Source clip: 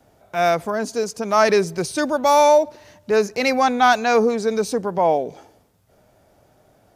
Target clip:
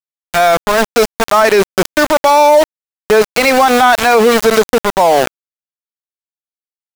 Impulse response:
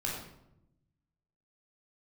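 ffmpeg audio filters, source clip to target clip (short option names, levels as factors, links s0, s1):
-filter_complex "[0:a]asplit=2[s0][s1];[s1]highpass=f=720:p=1,volume=3.55,asoftclip=type=tanh:threshold=0.668[s2];[s0][s2]amix=inputs=2:normalize=0,lowpass=f=3000:p=1,volume=0.501,aeval=exprs='val(0)*gte(abs(val(0)),0.1)':c=same,alimiter=level_in=6.31:limit=0.891:release=50:level=0:latency=1,volume=0.891"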